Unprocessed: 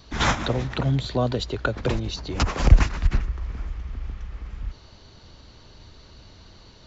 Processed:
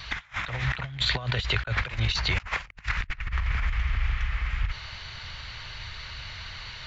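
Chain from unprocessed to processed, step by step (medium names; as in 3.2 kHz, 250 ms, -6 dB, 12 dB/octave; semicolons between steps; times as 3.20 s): FFT filter 130 Hz 0 dB, 280 Hz -17 dB, 2.1 kHz +15 dB, 5.9 kHz 0 dB; compressor with a negative ratio -29 dBFS, ratio -0.5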